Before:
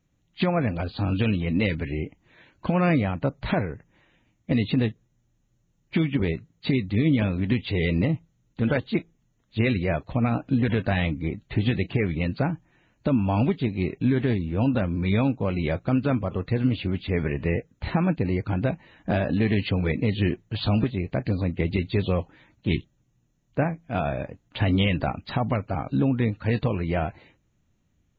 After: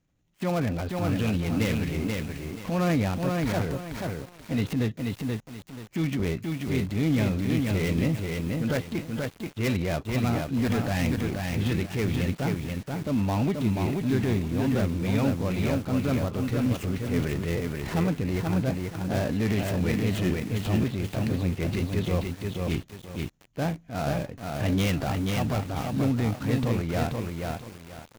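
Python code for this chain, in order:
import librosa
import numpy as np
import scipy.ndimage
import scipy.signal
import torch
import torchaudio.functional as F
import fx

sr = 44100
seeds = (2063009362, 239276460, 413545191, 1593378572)

y = fx.dead_time(x, sr, dead_ms=0.13)
y = fx.transient(y, sr, attack_db=-6, sustain_db=5)
y = fx.echo_crushed(y, sr, ms=482, feedback_pct=35, bits=7, wet_db=-3.0)
y = y * 10.0 ** (-2.5 / 20.0)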